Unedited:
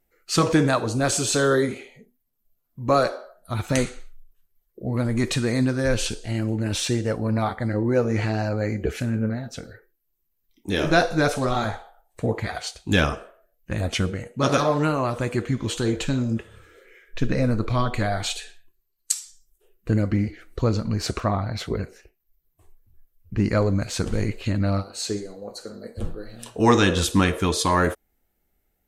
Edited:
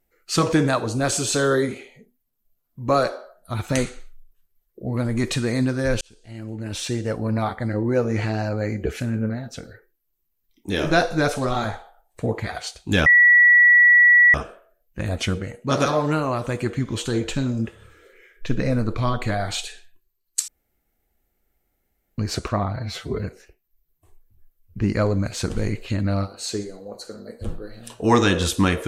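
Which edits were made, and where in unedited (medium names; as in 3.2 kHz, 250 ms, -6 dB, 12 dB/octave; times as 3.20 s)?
6.01–7.20 s: fade in
13.06 s: add tone 1.94 kHz -9.5 dBFS 1.28 s
19.20–20.90 s: room tone
21.48–21.80 s: stretch 1.5×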